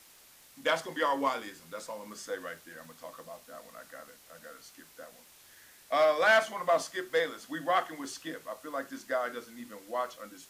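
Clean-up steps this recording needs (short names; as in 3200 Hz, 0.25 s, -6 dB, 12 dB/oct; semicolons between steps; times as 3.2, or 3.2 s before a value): de-click; denoiser 18 dB, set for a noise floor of -57 dBFS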